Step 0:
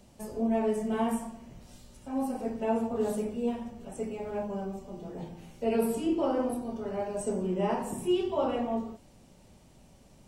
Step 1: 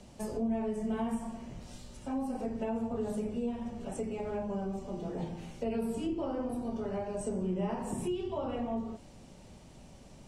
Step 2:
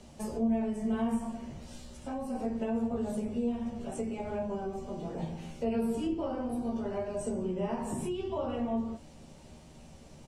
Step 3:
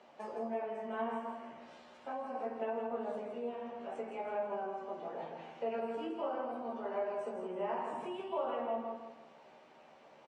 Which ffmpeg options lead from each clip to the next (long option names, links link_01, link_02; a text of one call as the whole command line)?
ffmpeg -i in.wav -filter_complex "[0:a]lowpass=9200,acrossover=split=160[link_01][link_02];[link_02]acompressor=threshold=-38dB:ratio=6[link_03];[link_01][link_03]amix=inputs=2:normalize=0,volume=4dB" out.wav
ffmpeg -i in.wav -filter_complex "[0:a]asplit=2[link_01][link_02];[link_02]adelay=13,volume=-5dB[link_03];[link_01][link_03]amix=inputs=2:normalize=0" out.wav
ffmpeg -i in.wav -filter_complex "[0:a]highpass=640,lowpass=2000,asplit=2[link_01][link_02];[link_02]aecho=0:1:162|324|486|648:0.473|0.166|0.058|0.0203[link_03];[link_01][link_03]amix=inputs=2:normalize=0,volume=2.5dB" out.wav